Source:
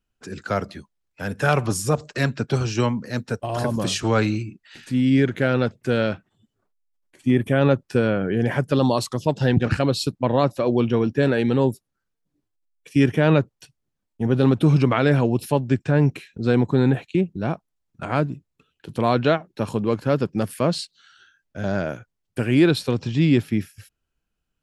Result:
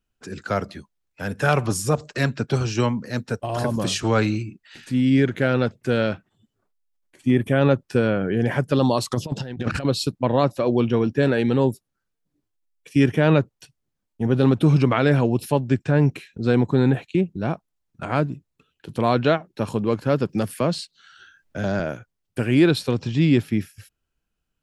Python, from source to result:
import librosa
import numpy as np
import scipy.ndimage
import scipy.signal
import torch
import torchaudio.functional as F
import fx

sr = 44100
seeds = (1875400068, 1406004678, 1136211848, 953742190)

y = fx.over_compress(x, sr, threshold_db=-25.0, ratio=-0.5, at=(9.11, 9.85))
y = fx.band_squash(y, sr, depth_pct=40, at=(20.29, 21.8))